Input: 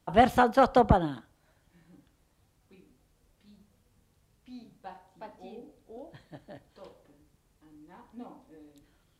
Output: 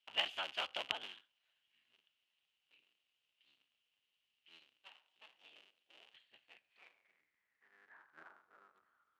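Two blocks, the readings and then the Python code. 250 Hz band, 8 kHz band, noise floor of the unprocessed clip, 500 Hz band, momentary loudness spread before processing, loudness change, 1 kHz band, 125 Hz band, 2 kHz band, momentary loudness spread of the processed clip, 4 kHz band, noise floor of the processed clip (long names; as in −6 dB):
−36.5 dB, −10.5 dB, −70 dBFS, −26.0 dB, 4 LU, −16.0 dB, −23.5 dB, −40.0 dB, −9.5 dB, 20 LU, +3.0 dB, below −85 dBFS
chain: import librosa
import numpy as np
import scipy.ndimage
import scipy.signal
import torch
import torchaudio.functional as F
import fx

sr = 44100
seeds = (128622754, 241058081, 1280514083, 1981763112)

y = fx.cycle_switch(x, sr, every=3, mode='inverted')
y = fx.filter_sweep_bandpass(y, sr, from_hz=2900.0, to_hz=1300.0, start_s=6.25, end_s=8.71, q=7.4)
y = y * librosa.db_to_amplitude(4.0)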